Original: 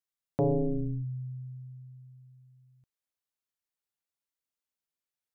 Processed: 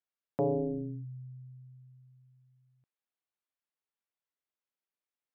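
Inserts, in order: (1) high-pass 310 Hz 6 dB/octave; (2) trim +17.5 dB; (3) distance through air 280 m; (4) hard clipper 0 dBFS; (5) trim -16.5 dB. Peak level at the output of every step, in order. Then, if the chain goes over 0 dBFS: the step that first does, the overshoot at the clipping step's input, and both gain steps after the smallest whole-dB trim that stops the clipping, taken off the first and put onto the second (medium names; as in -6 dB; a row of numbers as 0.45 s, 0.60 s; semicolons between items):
-20.5 dBFS, -3.0 dBFS, -3.5 dBFS, -3.5 dBFS, -20.0 dBFS; nothing clips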